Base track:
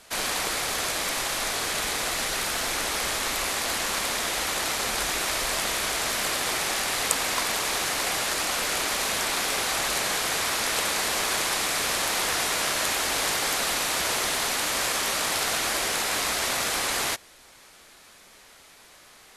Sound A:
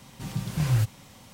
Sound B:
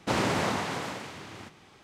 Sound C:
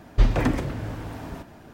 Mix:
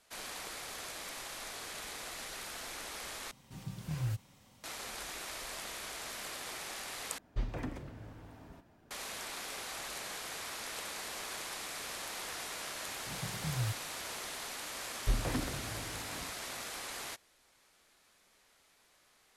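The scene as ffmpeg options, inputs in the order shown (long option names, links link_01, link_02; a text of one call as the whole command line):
ffmpeg -i bed.wav -i cue0.wav -i cue1.wav -i cue2.wav -filter_complex "[1:a]asplit=2[link_01][link_02];[3:a]asplit=2[link_03][link_04];[0:a]volume=-16dB,asplit=3[link_05][link_06][link_07];[link_05]atrim=end=3.314[link_08];[link_01]atrim=end=1.33,asetpts=PTS-STARTPTS,volume=-12dB[link_09];[link_06]atrim=start=4.636:end=7.184[link_10];[link_03]atrim=end=1.73,asetpts=PTS-STARTPTS,volume=-17dB[link_11];[link_07]atrim=start=8.906[link_12];[link_02]atrim=end=1.33,asetpts=PTS-STARTPTS,volume=-12dB,afade=type=in:duration=0.004:curve=hsin,afade=type=out:start_time=1.326:duration=0.004:curve=hsin,adelay=12870[link_13];[link_04]atrim=end=1.73,asetpts=PTS-STARTPTS,volume=-13dB,afade=type=in:duration=0.004:curve=hsin,afade=type=out:start_time=1.726:duration=0.004:curve=hsin,adelay=14890[link_14];[link_08][link_09]acrossfade=duration=0.004:curve1=hsin:curve2=hsin[link_15];[link_15][link_10]acrossfade=duration=0.004:curve1=hsin:curve2=hsin[link_16];[link_16][link_11]acrossfade=duration=0.004:curve1=hsin:curve2=hsin[link_17];[link_17][link_12]acrossfade=duration=0.004:curve1=hsin:curve2=hsin[link_18];[link_18][link_13][link_14]amix=inputs=3:normalize=0" out.wav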